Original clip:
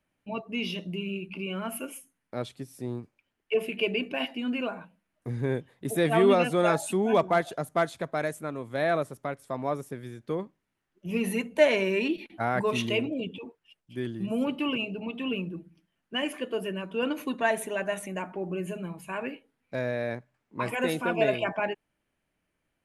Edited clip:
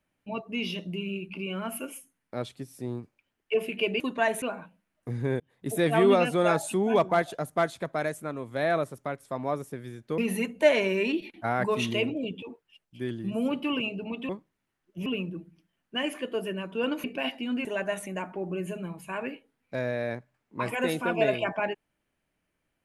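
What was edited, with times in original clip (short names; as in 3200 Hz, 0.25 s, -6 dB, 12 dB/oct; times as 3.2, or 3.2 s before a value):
4–4.61 swap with 17.23–17.65
5.59–5.87 fade in
10.37–11.14 move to 15.25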